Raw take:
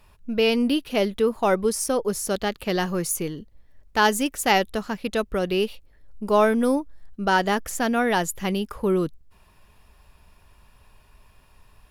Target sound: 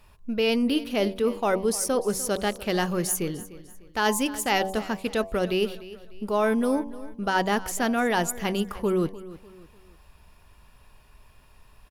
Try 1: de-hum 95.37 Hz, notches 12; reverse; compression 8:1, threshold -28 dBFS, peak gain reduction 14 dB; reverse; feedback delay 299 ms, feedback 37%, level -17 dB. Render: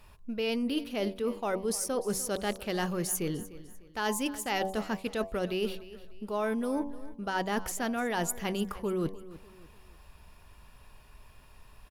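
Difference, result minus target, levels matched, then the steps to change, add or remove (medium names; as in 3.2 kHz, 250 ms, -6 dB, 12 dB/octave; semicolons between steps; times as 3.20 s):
compression: peak gain reduction +8 dB
change: compression 8:1, threshold -19 dBFS, peak gain reduction 6 dB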